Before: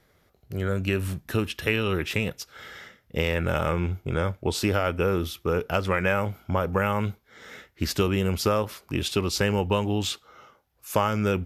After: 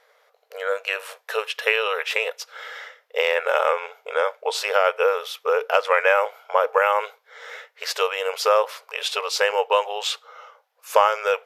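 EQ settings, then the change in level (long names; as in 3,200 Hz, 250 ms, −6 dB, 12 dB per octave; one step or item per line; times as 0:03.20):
linear-phase brick-wall high-pass 430 Hz
low-pass filter 3,800 Hz 6 dB per octave
parametric band 1,000 Hz +2.5 dB 0.23 octaves
+7.5 dB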